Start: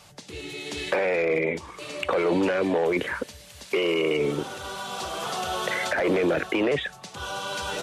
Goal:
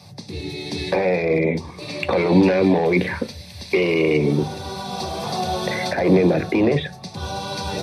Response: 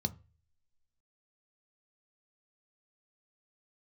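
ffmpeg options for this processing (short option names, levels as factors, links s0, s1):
-filter_complex "[0:a]asettb=1/sr,asplit=3[s0][s1][s2];[s0]atrim=end=1.884[s3];[s1]atrim=start=1.88:end=4.18,asetpts=PTS-STARTPTS,afade=t=in:d=0.004:c=qsin,afade=t=out:st=2.296:d=0.004:c=qsin,equalizer=f=2500:t=o:w=1.5:g=5.5[s4];[s2]atrim=start=4.176[s5];[s3][s4]acrossfade=d=0.004:c1=hsin:c2=qsin[s6];[s6][s5]acrossfade=d=0.004:c1=qsin:c2=hsin[s7];[1:a]atrim=start_sample=2205[s8];[s7][s8]afir=irnorm=-1:irlink=0"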